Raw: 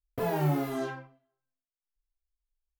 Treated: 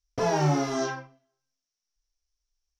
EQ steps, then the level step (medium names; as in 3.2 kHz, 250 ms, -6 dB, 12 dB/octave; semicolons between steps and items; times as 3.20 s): dynamic bell 1 kHz, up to +4 dB, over -44 dBFS, Q 0.75; resonant low-pass 5.7 kHz, resonance Q 9.9; +2.5 dB